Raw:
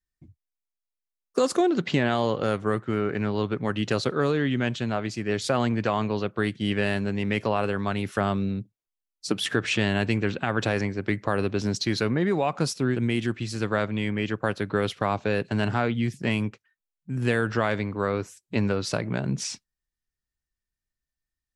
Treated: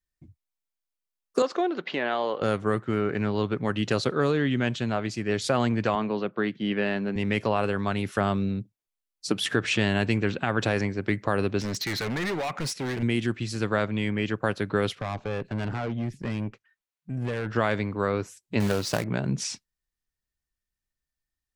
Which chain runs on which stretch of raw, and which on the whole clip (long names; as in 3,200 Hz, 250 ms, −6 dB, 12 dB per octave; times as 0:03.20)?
0:01.42–0:02.42: band-pass filter 430–6,300 Hz + high-frequency loss of the air 150 metres
0:05.95–0:07.16: high-pass filter 150 Hz 24 dB per octave + high-frequency loss of the air 180 metres
0:11.60–0:13.03: parametric band 2,000 Hz +12.5 dB 0.65 octaves + hard clipping −26.5 dBFS
0:14.95–0:17.56: high-shelf EQ 3,500 Hz −10 dB + tube saturation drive 25 dB, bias 0.45 + one half of a high-frequency compander encoder only
0:18.60–0:19.04: log-companded quantiser 4 bits + highs frequency-modulated by the lows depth 0.18 ms
whole clip: no processing